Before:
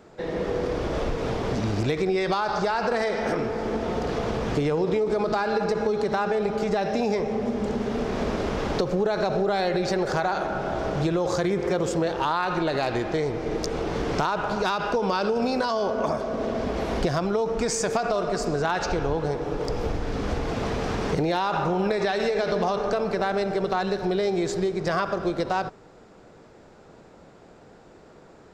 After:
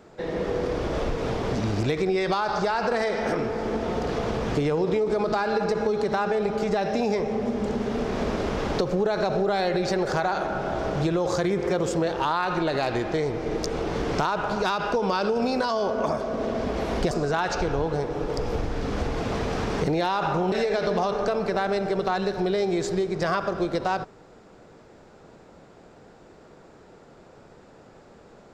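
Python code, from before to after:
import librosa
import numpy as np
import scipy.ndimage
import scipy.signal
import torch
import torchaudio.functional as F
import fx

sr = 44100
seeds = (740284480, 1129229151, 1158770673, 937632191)

y = fx.edit(x, sr, fx.cut(start_s=17.11, length_s=1.31),
    fx.cut(start_s=21.83, length_s=0.34), tone=tone)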